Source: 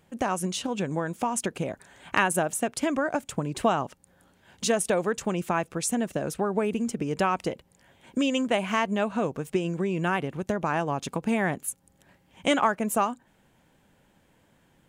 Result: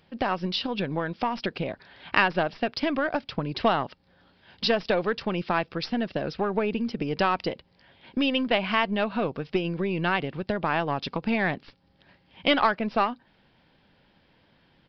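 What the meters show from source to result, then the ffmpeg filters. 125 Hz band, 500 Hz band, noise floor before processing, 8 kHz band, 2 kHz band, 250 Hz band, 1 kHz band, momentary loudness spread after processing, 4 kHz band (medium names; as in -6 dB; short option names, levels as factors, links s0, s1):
-0.5 dB, 0.0 dB, -64 dBFS, under -20 dB, +3.0 dB, -0.5 dB, +1.0 dB, 7 LU, +5.5 dB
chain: -af "aeval=exprs='0.422*(cos(1*acos(clip(val(0)/0.422,-1,1)))-cos(1*PI/2))+0.0266*(cos(4*acos(clip(val(0)/0.422,-1,1)))-cos(4*PI/2))+0.0335*(cos(6*acos(clip(val(0)/0.422,-1,1)))-cos(6*PI/2))':c=same,crystalizer=i=3:c=0,aresample=11025,aresample=44100"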